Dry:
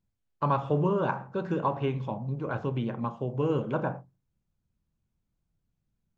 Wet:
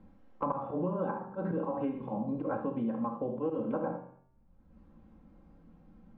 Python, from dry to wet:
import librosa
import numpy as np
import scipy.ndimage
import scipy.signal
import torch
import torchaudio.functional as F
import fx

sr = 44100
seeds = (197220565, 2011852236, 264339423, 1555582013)

p1 = scipy.signal.sosfilt(scipy.signal.butter(2, 1000.0, 'lowpass', fs=sr, output='sos'), x)
p2 = fx.hum_notches(p1, sr, base_hz=50, count=6)
p3 = p2 + 0.99 * np.pad(p2, (int(3.8 * sr / 1000.0), 0))[:len(p2)]
p4 = fx.auto_swell(p3, sr, attack_ms=102.0)
p5 = fx.rider(p4, sr, range_db=10, speed_s=0.5)
p6 = p4 + F.gain(torch.from_numpy(p5), -2.0).numpy()
p7 = fx.comb_fb(p6, sr, f0_hz=130.0, decay_s=0.58, harmonics='odd', damping=0.0, mix_pct=80)
p8 = fx.echo_feedback(p7, sr, ms=112, feedback_pct=34, wet_db=-23.0)
p9 = fx.rev_gated(p8, sr, seeds[0], gate_ms=90, shape='rising', drr_db=7.5)
p10 = fx.band_squash(p9, sr, depth_pct=100)
y = F.gain(torch.from_numpy(p10), 3.5).numpy()